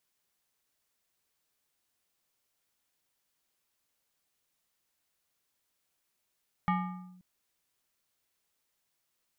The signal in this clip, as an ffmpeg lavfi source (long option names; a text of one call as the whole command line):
ffmpeg -f lavfi -i "aevalsrc='0.0708*pow(10,-3*t/0.99)*sin(2*PI*182*t+1.2*clip(1-t/0.51,0,1)*sin(2*PI*5.62*182*t))':duration=0.53:sample_rate=44100" out.wav